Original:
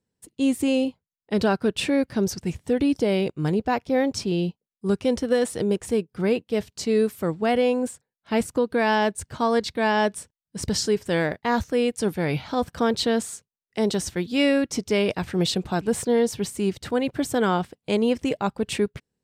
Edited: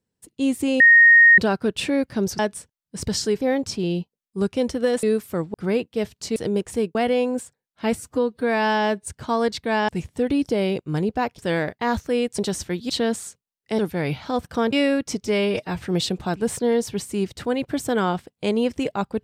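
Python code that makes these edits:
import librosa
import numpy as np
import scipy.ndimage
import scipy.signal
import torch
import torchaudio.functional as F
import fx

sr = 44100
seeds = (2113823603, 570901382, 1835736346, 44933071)

y = fx.edit(x, sr, fx.bleep(start_s=0.8, length_s=0.58, hz=1860.0, db=-8.0),
    fx.swap(start_s=2.39, length_s=1.5, other_s=10.0, other_length_s=1.02),
    fx.swap(start_s=5.51, length_s=0.59, other_s=6.92, other_length_s=0.51),
    fx.stretch_span(start_s=8.43, length_s=0.73, factor=1.5),
    fx.swap(start_s=12.02, length_s=0.94, other_s=13.85, other_length_s=0.51),
    fx.stretch_span(start_s=14.89, length_s=0.36, factor=1.5), tone=tone)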